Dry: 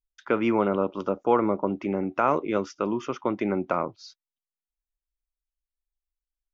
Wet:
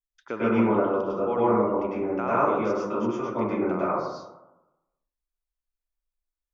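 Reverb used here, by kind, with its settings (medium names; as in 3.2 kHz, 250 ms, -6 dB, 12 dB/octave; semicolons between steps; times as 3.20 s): plate-style reverb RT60 1 s, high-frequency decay 0.3×, pre-delay 90 ms, DRR -8.5 dB; trim -9 dB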